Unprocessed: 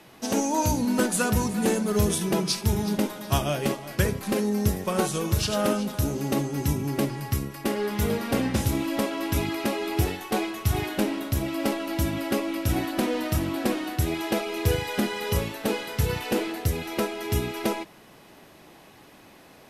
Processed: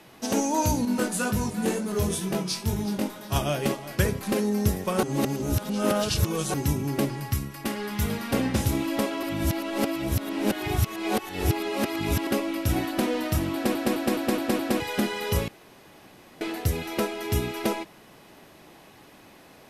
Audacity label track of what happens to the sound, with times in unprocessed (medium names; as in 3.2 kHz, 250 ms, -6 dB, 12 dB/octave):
0.850000	3.360000	chorus 2 Hz, delay 19.5 ms, depth 3.8 ms
5.030000	6.540000	reverse
7.220000	8.330000	dynamic bell 460 Hz, up to -8 dB, over -42 dBFS, Q 1.1
9.230000	12.270000	reverse
13.540000	13.540000	stutter in place 0.21 s, 6 plays
15.480000	16.410000	room tone